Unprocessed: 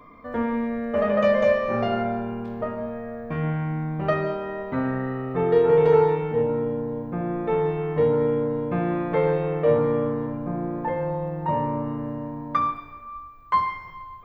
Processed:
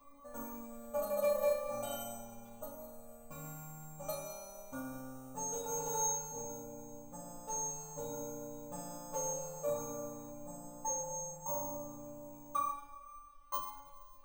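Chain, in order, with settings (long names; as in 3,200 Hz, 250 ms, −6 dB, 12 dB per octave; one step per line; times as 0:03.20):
phaser with its sweep stopped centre 800 Hz, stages 4
bad sample-rate conversion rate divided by 6×, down none, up hold
stiff-string resonator 280 Hz, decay 0.58 s, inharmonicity 0.002
level +12 dB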